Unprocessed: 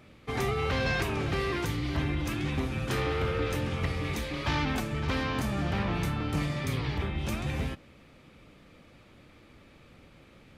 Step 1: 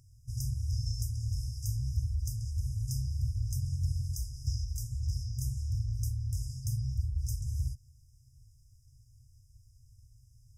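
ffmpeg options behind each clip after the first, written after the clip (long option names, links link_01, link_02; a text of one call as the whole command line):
ffmpeg -i in.wav -af "afftfilt=real='re*(1-between(b*sr/4096,130,4900))':imag='im*(1-between(b*sr/4096,130,4900))':win_size=4096:overlap=0.75,volume=2dB" out.wav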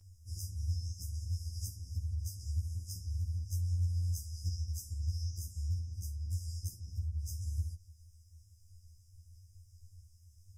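ffmpeg -i in.wav -af "acompressor=threshold=-35dB:ratio=6,afftfilt=real='re*2*eq(mod(b,4),0)':imag='im*2*eq(mod(b,4),0)':win_size=2048:overlap=0.75,volume=4dB" out.wav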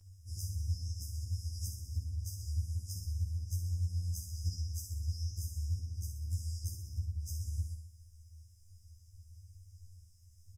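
ffmpeg -i in.wav -af "aecho=1:1:63|126|189|252|315|378|441|504:0.447|0.264|0.155|0.0917|0.0541|0.0319|0.0188|0.0111" out.wav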